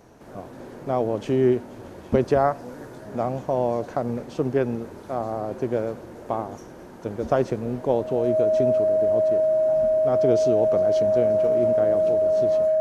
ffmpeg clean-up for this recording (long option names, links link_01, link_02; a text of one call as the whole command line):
ffmpeg -i in.wav -af "bandreject=frequency=630:width=30" out.wav